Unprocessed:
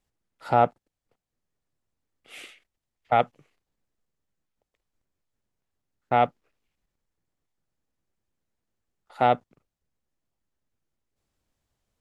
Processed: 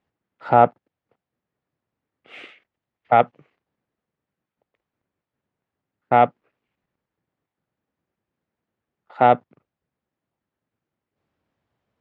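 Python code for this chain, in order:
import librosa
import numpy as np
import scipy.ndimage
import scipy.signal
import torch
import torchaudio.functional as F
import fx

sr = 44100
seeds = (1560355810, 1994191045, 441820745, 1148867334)

y = fx.bandpass_edges(x, sr, low_hz=110.0, high_hz=2400.0)
y = y * 10.0 ** (6.0 / 20.0)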